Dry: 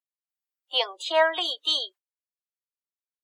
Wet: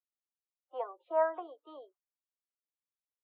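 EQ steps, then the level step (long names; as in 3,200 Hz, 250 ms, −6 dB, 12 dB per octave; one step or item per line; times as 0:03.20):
elliptic band-pass filter 250–1,300 Hz, stop band 80 dB
high-frequency loss of the air 63 metres
−6.5 dB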